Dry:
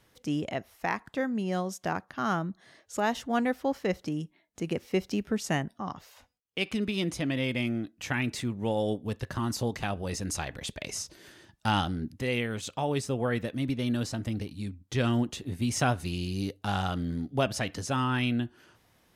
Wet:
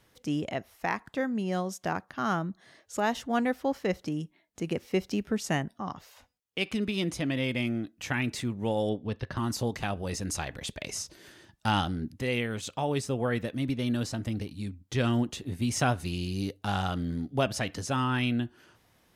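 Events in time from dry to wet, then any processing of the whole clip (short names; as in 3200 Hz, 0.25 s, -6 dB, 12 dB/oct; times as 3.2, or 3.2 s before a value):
8.89–9.37 polynomial smoothing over 15 samples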